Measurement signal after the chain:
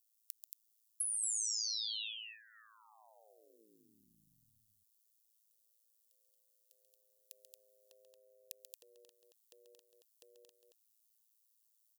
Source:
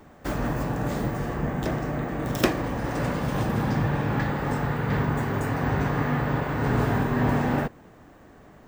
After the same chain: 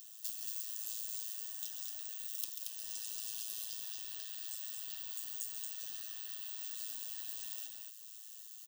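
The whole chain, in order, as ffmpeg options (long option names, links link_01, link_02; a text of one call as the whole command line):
ffmpeg -i in.wav -filter_complex "[0:a]aderivative,acompressor=threshold=-54dB:ratio=6,tremolo=f=110:d=0.788,aexciter=amount=13:drive=4.5:freq=2200,asuperstop=centerf=2200:order=8:qfactor=3.2,asplit=2[link_01][link_02];[link_02]aecho=0:1:137|227.4:0.355|0.631[link_03];[link_01][link_03]amix=inputs=2:normalize=0,volume=-7.5dB" out.wav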